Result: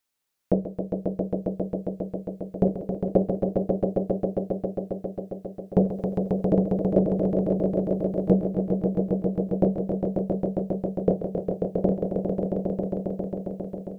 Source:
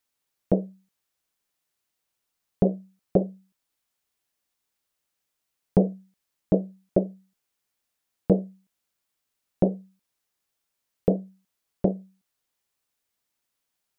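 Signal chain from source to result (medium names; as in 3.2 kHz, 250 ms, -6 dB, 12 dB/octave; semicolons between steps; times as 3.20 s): hum notches 50/100/150/200 Hz; echo with a slow build-up 135 ms, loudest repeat 5, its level -5.5 dB; 5.79–8.43 s: tape noise reduction on one side only encoder only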